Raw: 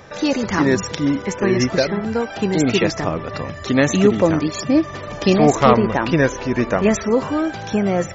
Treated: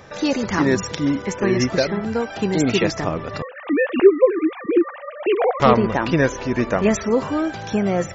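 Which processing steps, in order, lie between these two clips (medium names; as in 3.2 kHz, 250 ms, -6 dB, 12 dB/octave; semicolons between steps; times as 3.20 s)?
3.42–5.60 s: formants replaced by sine waves; trim -1.5 dB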